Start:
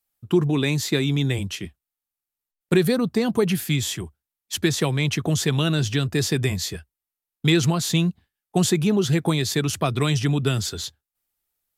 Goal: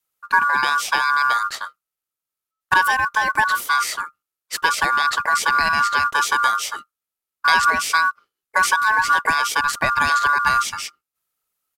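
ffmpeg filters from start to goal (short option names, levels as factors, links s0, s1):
-af "adynamicequalizer=threshold=0.0112:dfrequency=110:dqfactor=2.6:tfrequency=110:tqfactor=2.6:attack=5:release=100:ratio=0.375:range=3:mode=boostabove:tftype=bell,acrusher=bits=8:mode=log:mix=0:aa=0.000001,aresample=32000,aresample=44100,aeval=exprs='val(0)*sin(2*PI*1300*n/s)':c=same,volume=1.68"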